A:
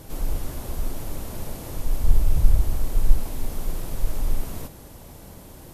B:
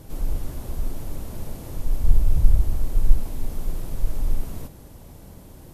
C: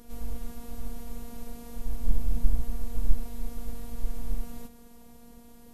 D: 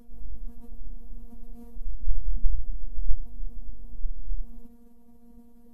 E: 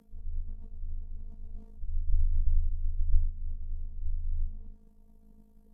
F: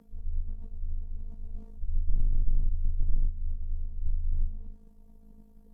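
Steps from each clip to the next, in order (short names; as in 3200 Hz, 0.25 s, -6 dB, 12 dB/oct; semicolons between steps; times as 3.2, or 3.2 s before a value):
low shelf 390 Hz +6 dB; gain -5 dB
robotiser 236 Hz; gain -3.5 dB
spectral contrast raised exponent 1.6; gain +3 dB
frequency shift -23 Hz; AM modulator 53 Hz, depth 50%; treble ducked by the level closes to 350 Hz, closed at -17 dBFS; gain -5.5 dB
slew limiter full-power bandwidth 1.7 Hz; gain +3.5 dB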